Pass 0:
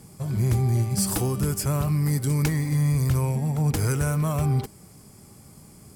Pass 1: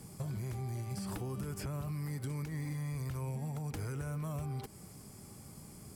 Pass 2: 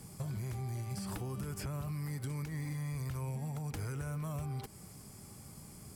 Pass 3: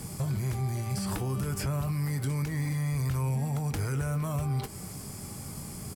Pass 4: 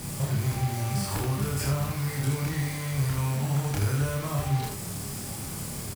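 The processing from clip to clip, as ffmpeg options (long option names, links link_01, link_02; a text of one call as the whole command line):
ffmpeg -i in.wav -filter_complex "[0:a]acrossover=split=530|3600[link_01][link_02][link_03];[link_01]acompressor=threshold=-27dB:ratio=4[link_04];[link_02]acompressor=threshold=-38dB:ratio=4[link_05];[link_03]acompressor=threshold=-44dB:ratio=4[link_06];[link_04][link_05][link_06]amix=inputs=3:normalize=0,alimiter=limit=-22dB:level=0:latency=1:release=196,acompressor=threshold=-33dB:ratio=6,volume=-3dB" out.wav
ffmpeg -i in.wav -af "equalizer=frequency=340:width=0.65:gain=-3,volume=1dB" out.wav
ffmpeg -i in.wav -filter_complex "[0:a]asplit=2[link_01][link_02];[link_02]alimiter=level_in=14.5dB:limit=-24dB:level=0:latency=1,volume=-14.5dB,volume=2dB[link_03];[link_01][link_03]amix=inputs=2:normalize=0,asplit=2[link_04][link_05];[link_05]adelay=22,volume=-12dB[link_06];[link_04][link_06]amix=inputs=2:normalize=0,volume=4dB" out.wav
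ffmpeg -i in.wav -filter_complex "[0:a]asplit=2[link_01][link_02];[link_02]aeval=exprs='(mod(75*val(0)+1,2)-1)/75':channel_layout=same,volume=-3.5dB[link_03];[link_01][link_03]amix=inputs=2:normalize=0,aecho=1:1:29.15|78.72:0.891|0.708" out.wav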